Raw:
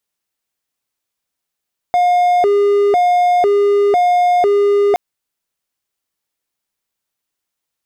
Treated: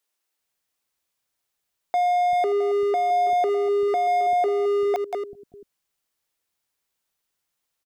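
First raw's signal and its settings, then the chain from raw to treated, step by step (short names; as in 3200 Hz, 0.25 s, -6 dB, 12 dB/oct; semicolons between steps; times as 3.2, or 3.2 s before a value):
siren hi-lo 406–713 Hz 1/s triangle -7.5 dBFS 3.02 s
reverse delay 0.194 s, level -12.5 dB; limiter -15.5 dBFS; bands offset in time highs, lows 0.39 s, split 240 Hz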